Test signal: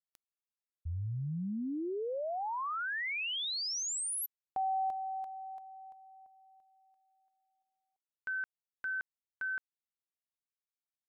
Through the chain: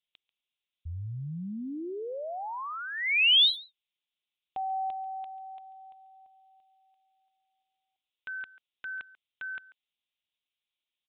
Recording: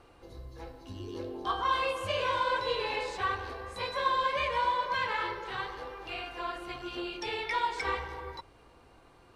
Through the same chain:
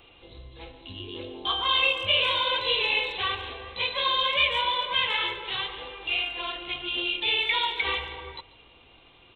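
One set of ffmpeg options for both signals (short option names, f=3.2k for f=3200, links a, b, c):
-filter_complex "[0:a]aresample=8000,aresample=44100,aexciter=amount=10.5:drive=1.2:freq=2.4k,asplit=2[a][b];[b]adelay=140,highpass=300,lowpass=3.4k,asoftclip=type=hard:threshold=-20.5dB,volume=-18dB[c];[a][c]amix=inputs=2:normalize=0"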